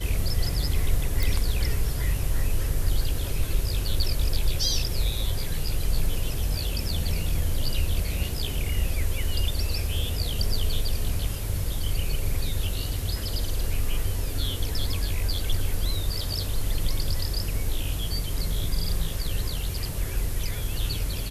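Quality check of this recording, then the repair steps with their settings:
1.23 s: pop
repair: de-click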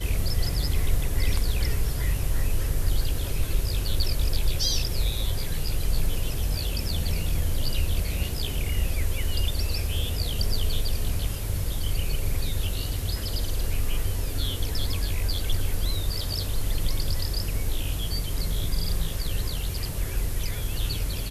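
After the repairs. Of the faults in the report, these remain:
nothing left

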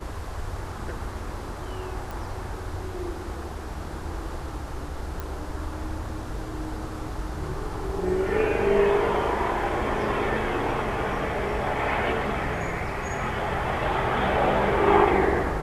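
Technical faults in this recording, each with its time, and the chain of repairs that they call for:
2.11 s: pop
5.20 s: pop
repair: de-click

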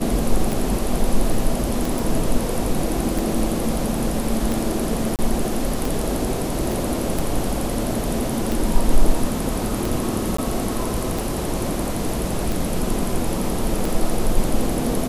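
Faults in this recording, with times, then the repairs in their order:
tick 45 rpm
1.99 s: pop
5.16–5.19 s: dropout 28 ms
6.72 s: pop
10.37–10.38 s: dropout 14 ms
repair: de-click; interpolate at 5.16 s, 28 ms; interpolate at 10.37 s, 14 ms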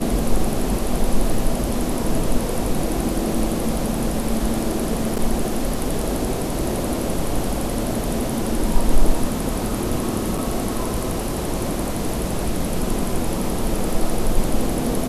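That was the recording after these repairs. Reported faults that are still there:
6.72 s: pop

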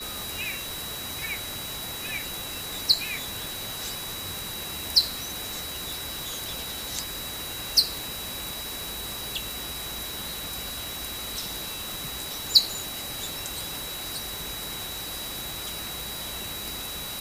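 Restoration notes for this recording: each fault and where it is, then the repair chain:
crackle 43 per s -39 dBFS
whine 3.9 kHz -37 dBFS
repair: de-click; band-stop 3.9 kHz, Q 30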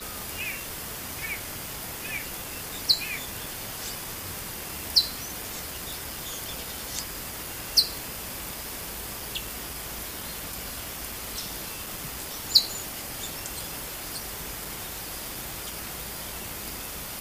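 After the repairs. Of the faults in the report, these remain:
nothing left

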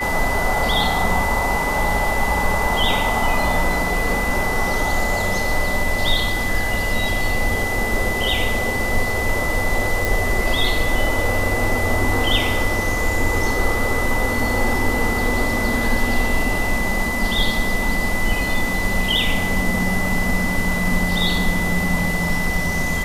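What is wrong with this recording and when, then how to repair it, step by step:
whine 2 kHz -23 dBFS
10.05 s: pop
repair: de-click; band-stop 2 kHz, Q 30

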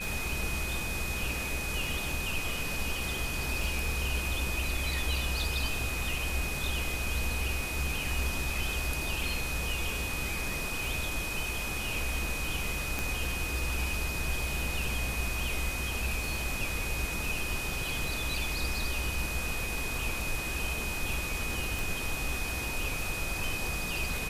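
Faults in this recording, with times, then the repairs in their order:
tick 33 1/3 rpm
whine 2.5 kHz -36 dBFS
12.99 s: pop
21.79 s: pop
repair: de-click; band-stop 2.5 kHz, Q 30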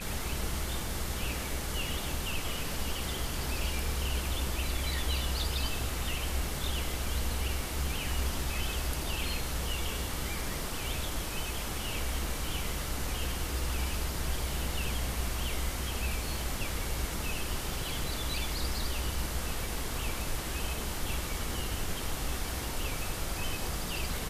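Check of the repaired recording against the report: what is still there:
12.99 s: pop

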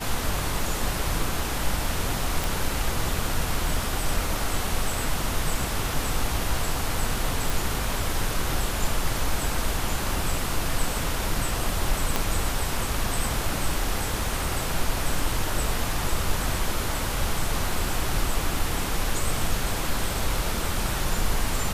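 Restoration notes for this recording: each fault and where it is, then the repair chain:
2.44 s: pop
7.50 s: pop
12.16 s: pop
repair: de-click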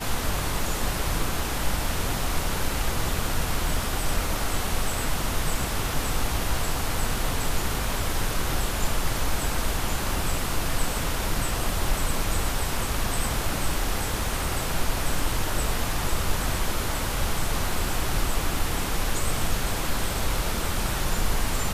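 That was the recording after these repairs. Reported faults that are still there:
12.16 s: pop

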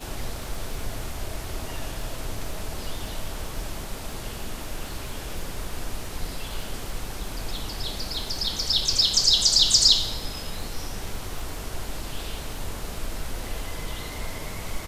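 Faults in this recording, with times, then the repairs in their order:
crackle 30 per s -35 dBFS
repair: de-click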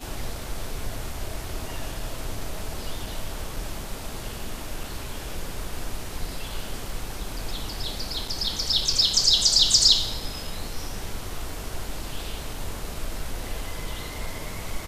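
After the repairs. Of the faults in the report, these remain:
nothing left

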